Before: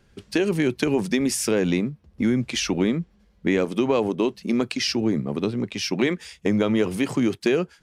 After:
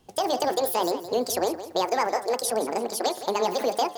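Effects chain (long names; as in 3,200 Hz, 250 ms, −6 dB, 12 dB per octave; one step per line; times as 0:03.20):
hum removal 52.53 Hz, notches 21
change of speed 1.97×
feedback echo at a low word length 168 ms, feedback 35%, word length 8 bits, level −12.5 dB
level −2.5 dB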